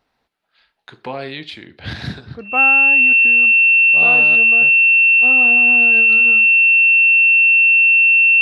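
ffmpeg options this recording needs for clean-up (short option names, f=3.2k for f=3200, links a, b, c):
-af "bandreject=f=2.7k:w=30"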